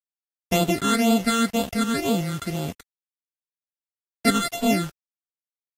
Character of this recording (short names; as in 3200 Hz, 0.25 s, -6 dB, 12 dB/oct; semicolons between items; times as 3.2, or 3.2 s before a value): a buzz of ramps at a fixed pitch in blocks of 64 samples; phasing stages 8, 2 Hz, lowest notch 660–1800 Hz; a quantiser's noise floor 8-bit, dither none; Vorbis